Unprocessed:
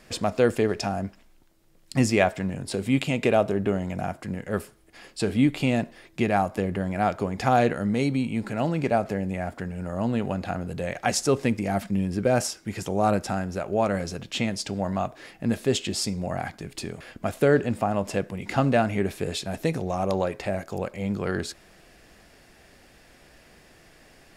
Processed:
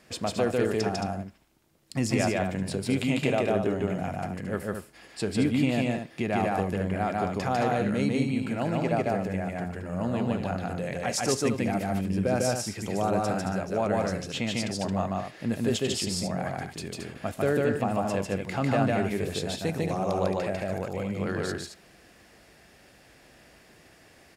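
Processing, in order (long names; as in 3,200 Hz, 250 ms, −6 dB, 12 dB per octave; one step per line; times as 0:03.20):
high-pass filter 59 Hz
brickwall limiter −12 dBFS, peak gain reduction 6.5 dB
loudspeakers that aren't time-aligned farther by 51 metres −1 dB, 76 metres −7 dB
level −4 dB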